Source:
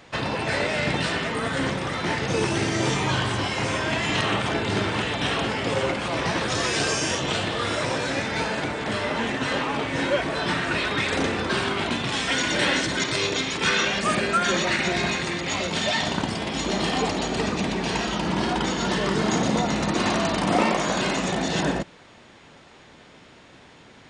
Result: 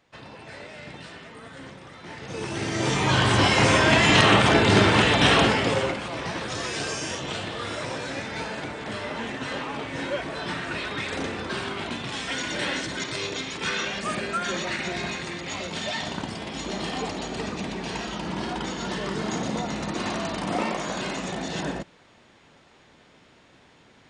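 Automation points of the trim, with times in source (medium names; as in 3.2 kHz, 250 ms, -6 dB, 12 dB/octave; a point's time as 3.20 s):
2.00 s -16.5 dB
2.67 s -4 dB
3.43 s +7 dB
5.42 s +7 dB
6.10 s -6 dB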